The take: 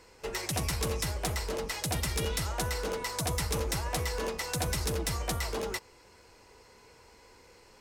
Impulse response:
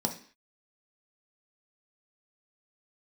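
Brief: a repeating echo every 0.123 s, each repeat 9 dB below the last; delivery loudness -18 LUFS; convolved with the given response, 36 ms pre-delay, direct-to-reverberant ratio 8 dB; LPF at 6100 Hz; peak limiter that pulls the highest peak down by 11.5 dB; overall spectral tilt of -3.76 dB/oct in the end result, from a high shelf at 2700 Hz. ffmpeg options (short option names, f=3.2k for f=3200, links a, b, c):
-filter_complex "[0:a]lowpass=6.1k,highshelf=f=2.7k:g=6.5,alimiter=level_in=6.5dB:limit=-24dB:level=0:latency=1,volume=-6.5dB,aecho=1:1:123|246|369|492:0.355|0.124|0.0435|0.0152,asplit=2[a][b];[1:a]atrim=start_sample=2205,adelay=36[c];[b][c]afir=irnorm=-1:irlink=0,volume=-14dB[d];[a][d]amix=inputs=2:normalize=0,volume=19dB"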